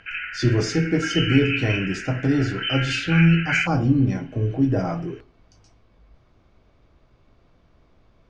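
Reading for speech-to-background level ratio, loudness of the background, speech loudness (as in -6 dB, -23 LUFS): 4.5 dB, -26.5 LUFS, -22.0 LUFS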